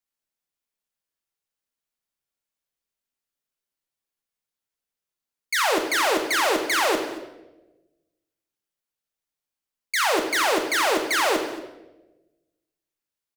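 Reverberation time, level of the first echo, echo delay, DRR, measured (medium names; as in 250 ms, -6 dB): 1.1 s, -18.5 dB, 227 ms, 3.5 dB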